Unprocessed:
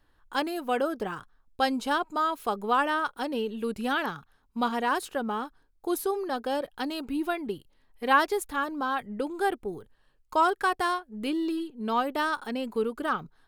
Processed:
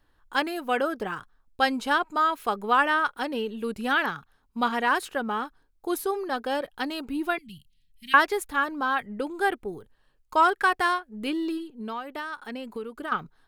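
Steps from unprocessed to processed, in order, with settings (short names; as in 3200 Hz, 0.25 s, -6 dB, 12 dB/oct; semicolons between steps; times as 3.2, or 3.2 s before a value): 7.38–8.14 Chebyshev band-stop 180–2700 Hz, order 3; dynamic EQ 1900 Hz, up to +7 dB, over -42 dBFS, Q 0.95; 11.57–13.12 compressor 4:1, threshold -33 dBFS, peak gain reduction 12.5 dB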